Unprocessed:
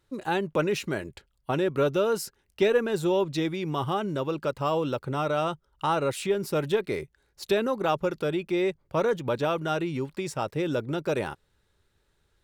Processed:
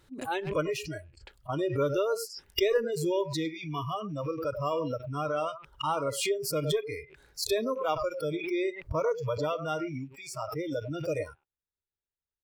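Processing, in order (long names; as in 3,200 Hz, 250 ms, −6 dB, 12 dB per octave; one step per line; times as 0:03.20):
loose part that buzzes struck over −41 dBFS, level −31 dBFS
0:10.21–0:10.90: parametric band 61 Hz −8.5 dB 2.2 octaves
far-end echo of a speakerphone 100 ms, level −9 dB
noise reduction from a noise print of the clip's start 28 dB
background raised ahead of every attack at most 72 dB per second
level −3.5 dB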